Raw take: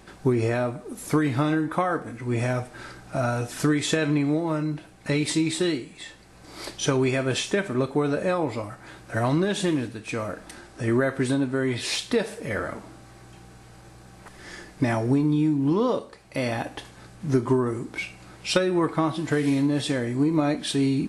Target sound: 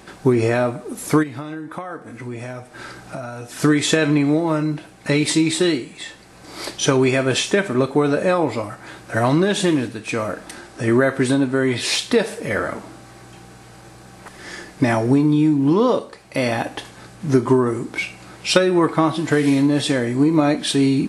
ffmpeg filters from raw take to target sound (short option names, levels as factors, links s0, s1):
-filter_complex "[0:a]lowshelf=f=73:g=-11.5,asplit=3[s0][s1][s2];[s0]afade=t=out:st=1.22:d=0.02[s3];[s1]acompressor=threshold=0.0141:ratio=4,afade=t=in:st=1.22:d=0.02,afade=t=out:st=3.61:d=0.02[s4];[s2]afade=t=in:st=3.61:d=0.02[s5];[s3][s4][s5]amix=inputs=3:normalize=0,volume=2.24"